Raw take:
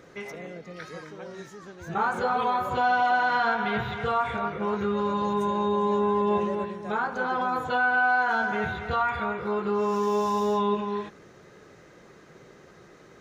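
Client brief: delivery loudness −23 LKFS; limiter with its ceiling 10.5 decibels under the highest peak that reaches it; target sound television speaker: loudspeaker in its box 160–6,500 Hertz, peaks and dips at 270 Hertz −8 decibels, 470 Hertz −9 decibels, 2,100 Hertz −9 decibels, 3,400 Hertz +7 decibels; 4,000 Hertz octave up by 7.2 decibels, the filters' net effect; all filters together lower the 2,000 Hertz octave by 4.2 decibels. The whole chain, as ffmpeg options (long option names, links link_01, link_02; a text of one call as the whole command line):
ffmpeg -i in.wav -af "equalizer=frequency=2000:width_type=o:gain=-6,equalizer=frequency=4000:width_type=o:gain=6,alimiter=level_in=1dB:limit=-24dB:level=0:latency=1,volume=-1dB,highpass=frequency=160:width=0.5412,highpass=frequency=160:width=1.3066,equalizer=frequency=270:width_type=q:width=4:gain=-8,equalizer=frequency=470:width_type=q:width=4:gain=-9,equalizer=frequency=2100:width_type=q:width=4:gain=-9,equalizer=frequency=3400:width_type=q:width=4:gain=7,lowpass=frequency=6500:width=0.5412,lowpass=frequency=6500:width=1.3066,volume=12dB" out.wav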